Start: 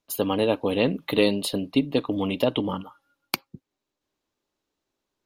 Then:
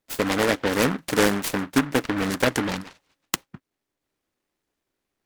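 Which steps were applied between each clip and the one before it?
short delay modulated by noise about 1,200 Hz, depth 0.23 ms
level +1 dB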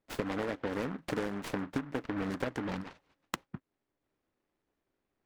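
low-pass filter 1,500 Hz 6 dB per octave
downward compressor 10 to 1, threshold −31 dBFS, peak gain reduction 16.5 dB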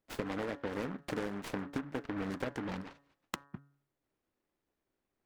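hum removal 141.2 Hz, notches 13
level −2.5 dB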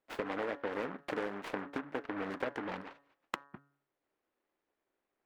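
bass and treble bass −14 dB, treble −12 dB
level +3 dB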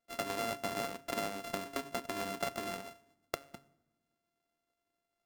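samples sorted by size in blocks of 64 samples
on a send at −20.5 dB: convolution reverb RT60 1.2 s, pre-delay 5 ms

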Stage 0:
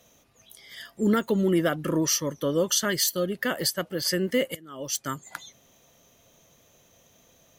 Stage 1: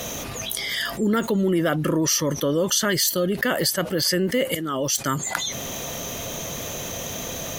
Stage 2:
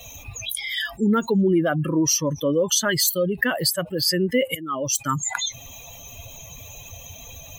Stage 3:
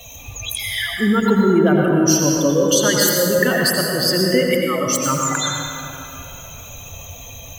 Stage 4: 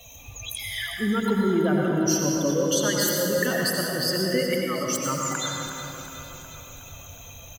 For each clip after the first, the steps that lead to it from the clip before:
envelope flattener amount 70%
spectral dynamics exaggerated over time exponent 2; level +4.5 dB
convolution reverb RT60 2.9 s, pre-delay 77 ms, DRR −1 dB; level +2 dB
repeating echo 365 ms, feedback 57%, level −11.5 dB; level −8 dB

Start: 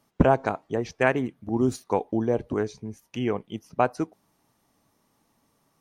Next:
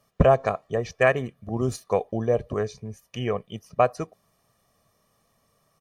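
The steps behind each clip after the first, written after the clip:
comb filter 1.7 ms, depth 68%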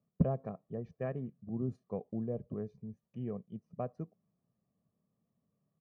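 resonant band-pass 190 Hz, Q 1.8
level −4.5 dB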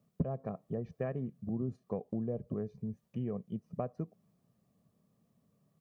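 downward compressor 3 to 1, threshold −43 dBFS, peak gain reduction 16 dB
level +8.5 dB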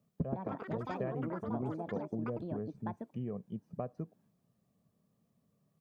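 delay with pitch and tempo change per echo 183 ms, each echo +6 semitones, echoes 3
level −2.5 dB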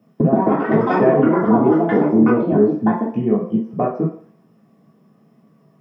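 convolution reverb RT60 0.50 s, pre-delay 3 ms, DRR −6 dB
level +6.5 dB

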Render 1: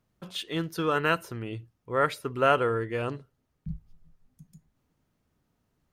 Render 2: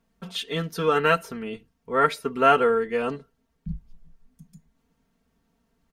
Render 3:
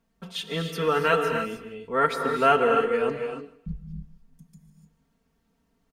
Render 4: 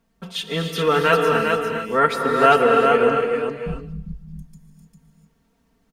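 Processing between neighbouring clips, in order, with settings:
high-shelf EQ 12,000 Hz −5.5 dB; comb filter 4.4 ms, depth 88%; level +2 dB
repeating echo 154 ms, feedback 32%, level −20 dB; reverb whose tail is shaped and stops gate 320 ms rising, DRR 4.5 dB; level −2 dB
single-tap delay 400 ms −4.5 dB; level +5 dB

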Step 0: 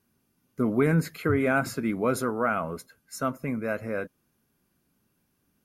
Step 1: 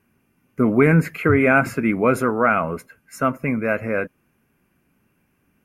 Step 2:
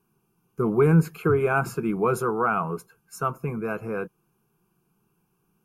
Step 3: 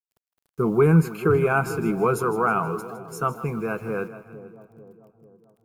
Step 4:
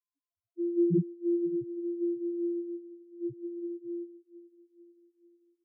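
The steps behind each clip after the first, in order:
high shelf with overshoot 3,100 Hz −6.5 dB, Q 3; level +7.5 dB
phaser with its sweep stopped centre 390 Hz, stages 8; level −1.5 dB
bit reduction 10 bits; echo with a time of its own for lows and highs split 790 Hz, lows 444 ms, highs 159 ms, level −13.5 dB; level +1.5 dB
samples sorted by size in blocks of 128 samples; spectral peaks only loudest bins 1; single-tap delay 547 ms −23.5 dB; level −2 dB

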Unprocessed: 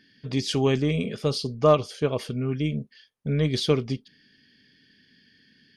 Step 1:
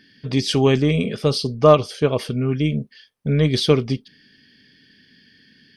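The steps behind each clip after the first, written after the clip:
notch filter 6,800 Hz, Q 10
level +6 dB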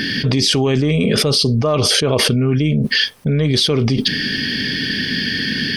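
envelope flattener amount 100%
level −7 dB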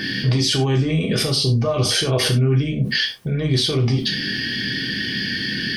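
reverb whose tail is shaped and stops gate 120 ms falling, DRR −0.5 dB
level −7.5 dB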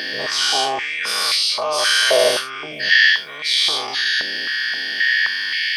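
every bin's largest magnitude spread in time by 240 ms
high-pass on a step sequencer 3.8 Hz 580–2,200 Hz
level −5 dB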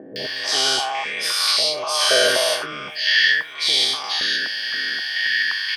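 three-band delay without the direct sound lows, highs, mids 160/250 ms, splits 660/2,000 Hz

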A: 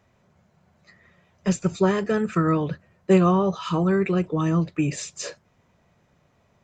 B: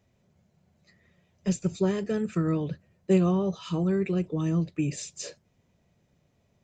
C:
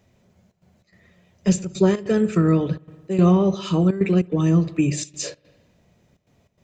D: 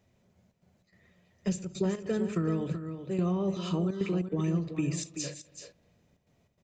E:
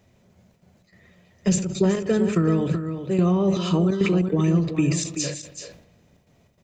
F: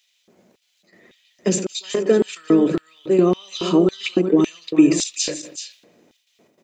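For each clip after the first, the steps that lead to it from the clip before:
parametric band 1,200 Hz −10.5 dB 1.6 octaves; level −3.5 dB
mains-hum notches 50/100/150 Hz; spring reverb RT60 1.1 s, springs 56 ms, chirp 30 ms, DRR 14.5 dB; gate pattern "xxxxx.xx.xx" 146 BPM −12 dB; level +8.5 dB
downward compressor 4 to 1, threshold −18 dBFS, peak gain reduction 6.5 dB; on a send: single-tap delay 380 ms −9.5 dB; on the sum: level −8 dB
level that may fall only so fast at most 89 dB per second; level +9 dB
auto-filter high-pass square 1.8 Hz 310–3,300 Hz; level +3 dB

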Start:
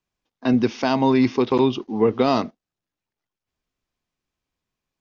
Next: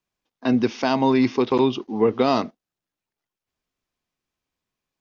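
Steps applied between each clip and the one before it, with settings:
low-shelf EQ 130 Hz −5.5 dB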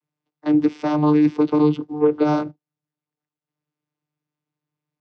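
channel vocoder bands 16, saw 150 Hz
level +3 dB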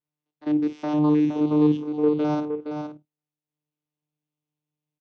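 spectrum averaged block by block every 50 ms
double-tracking delay 27 ms −13 dB
single-tap delay 467 ms −7 dB
level −6 dB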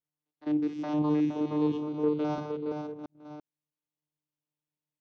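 delay that plays each chunk backwards 340 ms, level −7.5 dB
level −5.5 dB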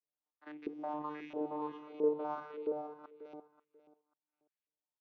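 auto-filter band-pass saw up 1.5 Hz 450–2,600 Hz
repeating echo 538 ms, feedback 20%, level −16 dB
level +1 dB

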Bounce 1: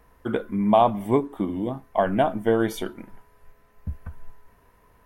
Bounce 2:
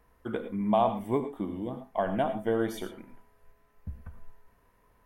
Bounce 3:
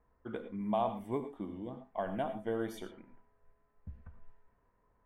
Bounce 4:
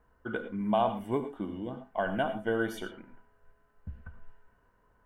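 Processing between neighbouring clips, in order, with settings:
reverb whose tail is shaped and stops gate 130 ms rising, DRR 9 dB; level −7.5 dB
low-pass that shuts in the quiet parts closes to 1,500 Hz, open at −26.5 dBFS; level −7.5 dB
hollow resonant body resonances 1,500/2,900 Hz, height 12 dB, ringing for 25 ms; level +5 dB

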